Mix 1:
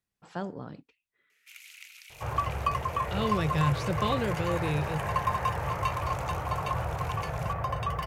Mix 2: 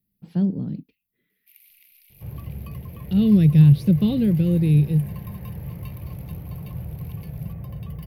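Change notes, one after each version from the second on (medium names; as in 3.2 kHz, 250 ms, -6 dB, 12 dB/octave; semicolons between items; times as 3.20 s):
speech +10.5 dB; master: add FFT filter 110 Hz 0 dB, 190 Hz +8 dB, 710 Hz -18 dB, 1.3 kHz -26 dB, 2.1 kHz -14 dB, 4.7 kHz -11 dB, 7.4 kHz -26 dB, 12 kHz +8 dB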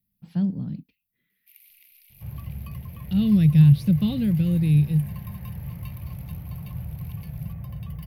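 master: add peaking EQ 400 Hz -11.5 dB 1.1 oct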